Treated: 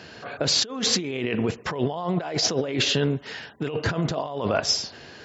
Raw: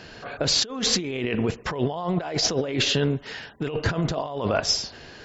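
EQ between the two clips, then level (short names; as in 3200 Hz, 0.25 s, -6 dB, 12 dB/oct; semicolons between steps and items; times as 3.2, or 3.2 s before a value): HPF 88 Hz; 0.0 dB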